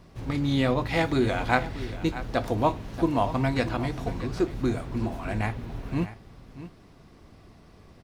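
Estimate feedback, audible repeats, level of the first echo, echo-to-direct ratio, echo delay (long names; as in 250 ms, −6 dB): repeats not evenly spaced, 1, −14.0 dB, −14.0 dB, 633 ms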